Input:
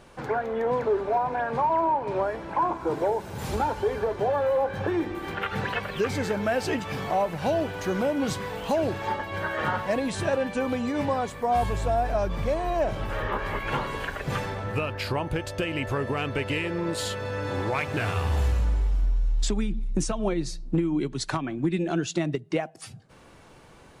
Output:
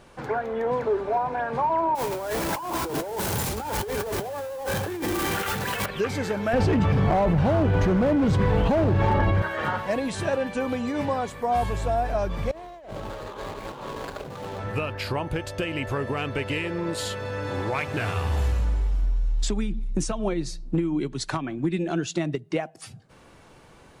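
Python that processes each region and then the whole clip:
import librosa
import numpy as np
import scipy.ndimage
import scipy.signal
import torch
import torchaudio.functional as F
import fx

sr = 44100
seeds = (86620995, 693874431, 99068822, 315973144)

y = fx.chain(x, sr, fx.zero_step(step_db=-30.5),
    fx.high_shelf(hz=6500.0, db=11.5),
    fx.over_compress(threshold_db=-29.0, ratio=-1.0), at=(1.95, 5.86))
y = fx.chain(y, sr, fx.riaa(side='playback'),
    fx.clip_hard(threshold_db=-18.5),
    fx.env_flatten(amount_pct=100), at=(6.53, 9.42))
y = fx.chain(y, sr, fx.median_filter(points=25),
    fx.low_shelf(hz=160.0, db=-11.0),
    fx.over_compress(threshold_db=-37.0, ratio=-1.0), at=(12.51, 14.59))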